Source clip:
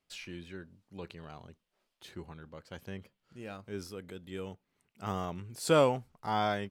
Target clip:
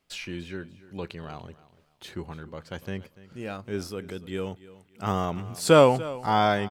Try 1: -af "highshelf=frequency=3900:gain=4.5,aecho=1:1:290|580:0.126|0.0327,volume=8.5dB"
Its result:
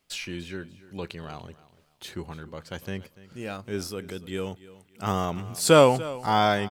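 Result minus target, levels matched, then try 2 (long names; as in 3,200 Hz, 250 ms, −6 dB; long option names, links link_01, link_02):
8,000 Hz band +5.0 dB
-af "highshelf=frequency=3900:gain=-2,aecho=1:1:290|580:0.126|0.0327,volume=8.5dB"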